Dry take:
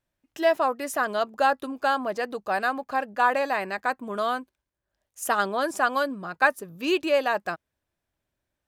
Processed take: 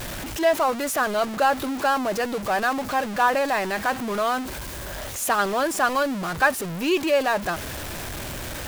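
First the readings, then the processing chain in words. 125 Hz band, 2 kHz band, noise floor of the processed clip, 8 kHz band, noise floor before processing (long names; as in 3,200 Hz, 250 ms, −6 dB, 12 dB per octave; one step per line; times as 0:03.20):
can't be measured, +2.0 dB, −33 dBFS, +9.0 dB, −84 dBFS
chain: converter with a step at zero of −26 dBFS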